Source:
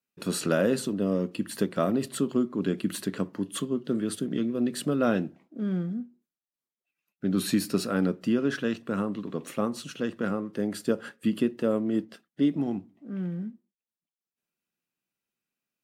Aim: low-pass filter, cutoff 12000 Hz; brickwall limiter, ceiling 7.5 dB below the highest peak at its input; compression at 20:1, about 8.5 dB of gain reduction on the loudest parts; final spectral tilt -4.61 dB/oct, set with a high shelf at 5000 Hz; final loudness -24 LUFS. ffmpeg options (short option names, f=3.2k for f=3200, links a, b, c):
-af "lowpass=12k,highshelf=f=5k:g=7,acompressor=threshold=-27dB:ratio=20,volume=11dB,alimiter=limit=-13dB:level=0:latency=1"